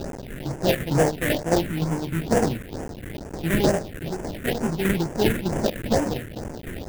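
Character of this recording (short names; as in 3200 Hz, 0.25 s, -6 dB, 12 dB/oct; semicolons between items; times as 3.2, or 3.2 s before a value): a quantiser's noise floor 6-bit, dither triangular; tremolo saw down 3.3 Hz, depth 60%; aliases and images of a low sample rate 1200 Hz, jitter 20%; phasing stages 4, 2.2 Hz, lowest notch 770–3900 Hz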